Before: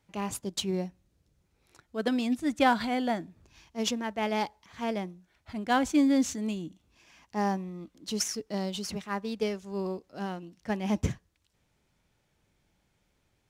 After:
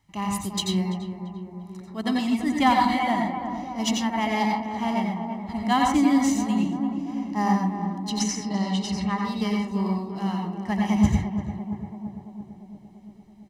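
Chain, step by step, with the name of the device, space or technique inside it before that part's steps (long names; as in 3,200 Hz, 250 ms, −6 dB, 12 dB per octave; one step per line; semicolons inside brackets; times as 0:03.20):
0:08.10–0:09.18: low-pass filter 6,600 Hz 12 dB per octave
tape delay 340 ms, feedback 79%, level −6.5 dB, low-pass 1,100 Hz
microphone above a desk (comb filter 1 ms, depth 77%; convolution reverb RT60 0.40 s, pre-delay 84 ms, DRR 0 dB)
level +1 dB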